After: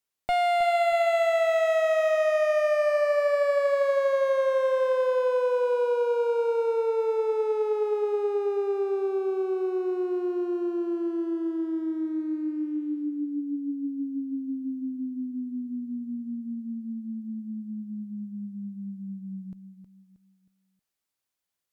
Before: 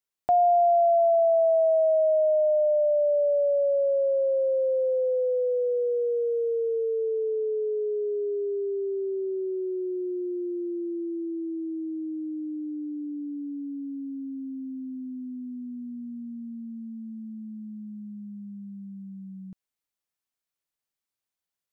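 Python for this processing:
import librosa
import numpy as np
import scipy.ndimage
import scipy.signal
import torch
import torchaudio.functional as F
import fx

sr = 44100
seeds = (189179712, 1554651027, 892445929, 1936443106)

y = fx.clip_asym(x, sr, top_db=-30.5, bottom_db=-22.0)
y = fx.echo_feedback(y, sr, ms=316, feedback_pct=37, wet_db=-10)
y = y * librosa.db_to_amplitude(3.0)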